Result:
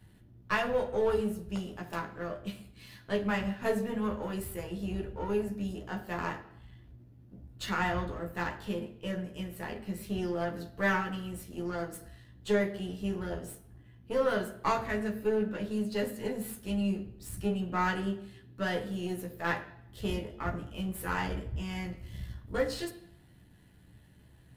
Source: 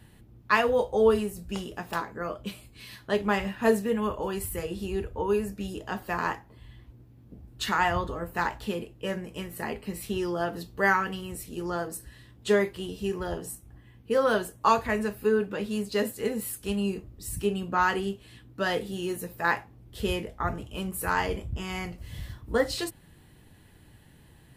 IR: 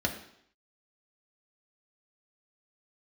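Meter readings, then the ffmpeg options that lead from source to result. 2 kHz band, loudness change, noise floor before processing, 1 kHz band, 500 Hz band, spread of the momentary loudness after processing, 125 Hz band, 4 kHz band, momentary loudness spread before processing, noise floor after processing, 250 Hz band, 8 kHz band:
-5.5 dB, -5.0 dB, -55 dBFS, -7.0 dB, -5.5 dB, 12 LU, -1.0 dB, -6.0 dB, 13 LU, -58 dBFS, -2.0 dB, -8.0 dB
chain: -filter_complex "[0:a]aeval=exprs='if(lt(val(0),0),0.447*val(0),val(0))':c=same,asplit=2[s0][s1];[1:a]atrim=start_sample=2205,adelay=12[s2];[s1][s2]afir=irnorm=-1:irlink=0,volume=0.376[s3];[s0][s3]amix=inputs=2:normalize=0,volume=0.473"

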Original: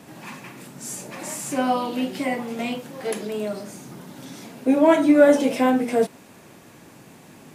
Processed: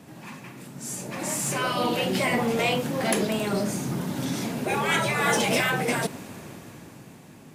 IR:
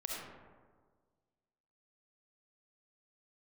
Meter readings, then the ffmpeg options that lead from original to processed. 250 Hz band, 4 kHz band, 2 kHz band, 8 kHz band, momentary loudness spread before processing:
-6.5 dB, +7.0 dB, +4.5 dB, +4.5 dB, 24 LU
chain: -filter_complex "[0:a]afftfilt=real='re*lt(hypot(re,im),0.251)':imag='im*lt(hypot(re,im),0.251)':win_size=1024:overlap=0.75,equalizer=f=96:t=o:w=2.3:g=6,dynaudnorm=f=330:g=9:m=5.31,asplit=2[s0][s1];[s1]asoftclip=type=tanh:threshold=0.158,volume=0.596[s2];[s0][s2]amix=inputs=2:normalize=0,volume=0.376"

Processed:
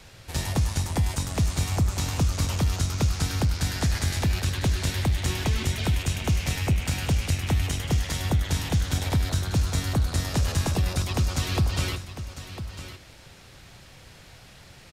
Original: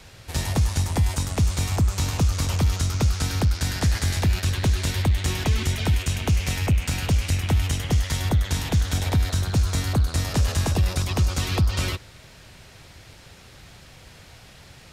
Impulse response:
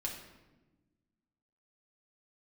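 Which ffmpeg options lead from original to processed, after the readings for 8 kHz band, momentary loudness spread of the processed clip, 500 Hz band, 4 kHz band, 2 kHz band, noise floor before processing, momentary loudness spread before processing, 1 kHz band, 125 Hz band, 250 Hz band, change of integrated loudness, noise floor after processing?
-1.5 dB, 5 LU, -2.0 dB, -1.5 dB, -2.0 dB, -48 dBFS, 1 LU, -1.5 dB, -2.5 dB, -1.5 dB, -2.5 dB, -49 dBFS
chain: -filter_complex "[0:a]aecho=1:1:1001:0.251,asplit=2[s0][s1];[1:a]atrim=start_sample=2205[s2];[s1][s2]afir=irnorm=-1:irlink=0,volume=0.178[s3];[s0][s3]amix=inputs=2:normalize=0,volume=0.708"

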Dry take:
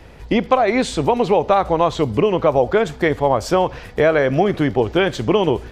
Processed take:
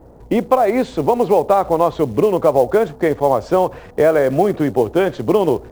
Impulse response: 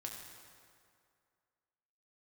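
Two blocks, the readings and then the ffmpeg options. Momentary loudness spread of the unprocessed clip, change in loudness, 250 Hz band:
3 LU, +1.5 dB, +0.5 dB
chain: -filter_complex "[0:a]lowshelf=f=430:g=6.5,acrossover=split=110|1300[s0][s1][s2];[s2]acrusher=bits=6:mix=0:aa=0.000001[s3];[s0][s1][s3]amix=inputs=3:normalize=0,aeval=exprs='val(0)+0.00891*(sin(2*PI*60*n/s)+sin(2*PI*2*60*n/s)/2+sin(2*PI*3*60*n/s)/3+sin(2*PI*4*60*n/s)/4+sin(2*PI*5*60*n/s)/5)':c=same,lowpass=7500,equalizer=f=640:w=0.33:g=12.5,acrusher=bits=7:mode=log:mix=0:aa=0.000001,volume=0.237"

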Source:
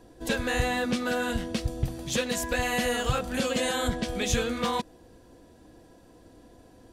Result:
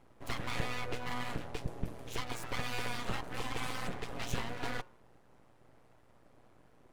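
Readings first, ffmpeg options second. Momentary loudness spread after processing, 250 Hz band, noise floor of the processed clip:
5 LU, -14.0 dB, -62 dBFS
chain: -af "highshelf=f=3100:t=q:w=1.5:g=-6,bandreject=f=181.6:t=h:w=4,bandreject=f=363.2:t=h:w=4,bandreject=f=544.8:t=h:w=4,bandreject=f=726.4:t=h:w=4,bandreject=f=908:t=h:w=4,bandreject=f=1089.6:t=h:w=4,bandreject=f=1271.2:t=h:w=4,bandreject=f=1452.8:t=h:w=4,bandreject=f=1634.4:t=h:w=4,bandreject=f=1816:t=h:w=4,bandreject=f=1997.6:t=h:w=4,aeval=exprs='abs(val(0))':c=same,tremolo=f=120:d=0.519,volume=0.562"

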